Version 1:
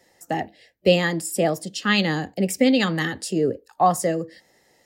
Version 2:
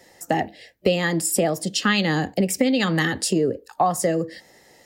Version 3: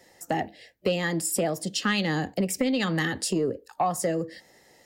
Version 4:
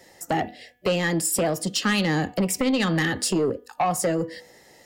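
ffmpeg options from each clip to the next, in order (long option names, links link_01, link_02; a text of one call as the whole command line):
ffmpeg -i in.wav -af "acompressor=threshold=-25dB:ratio=5,volume=7.5dB" out.wav
ffmpeg -i in.wav -af "asoftclip=type=tanh:threshold=-9dB,volume=-4.5dB" out.wav
ffmpeg -i in.wav -af "aeval=exprs='0.2*sin(PI/2*1.58*val(0)/0.2)':channel_layout=same,bandreject=frequency=245.3:width_type=h:width=4,bandreject=frequency=490.6:width_type=h:width=4,bandreject=frequency=735.9:width_type=h:width=4,bandreject=frequency=981.2:width_type=h:width=4,bandreject=frequency=1226.5:width_type=h:width=4,bandreject=frequency=1471.8:width_type=h:width=4,bandreject=frequency=1717.1:width_type=h:width=4,bandreject=frequency=1962.4:width_type=h:width=4,bandreject=frequency=2207.7:width_type=h:width=4,bandreject=frequency=2453:width_type=h:width=4,bandreject=frequency=2698.3:width_type=h:width=4,bandreject=frequency=2943.6:width_type=h:width=4,bandreject=frequency=3188.9:width_type=h:width=4,bandreject=frequency=3434.2:width_type=h:width=4,volume=-3dB" out.wav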